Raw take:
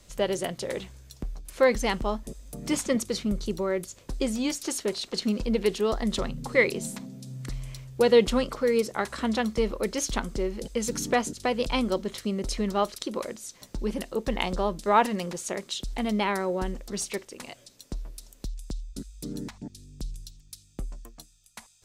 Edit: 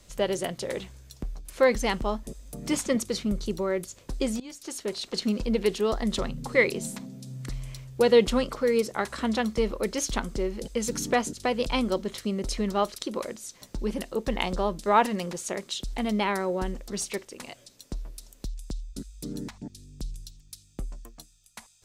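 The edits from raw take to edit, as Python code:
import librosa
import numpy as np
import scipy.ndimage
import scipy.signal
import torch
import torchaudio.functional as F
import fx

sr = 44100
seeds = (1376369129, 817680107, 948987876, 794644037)

y = fx.edit(x, sr, fx.fade_in_from(start_s=4.4, length_s=0.7, floor_db=-21.0), tone=tone)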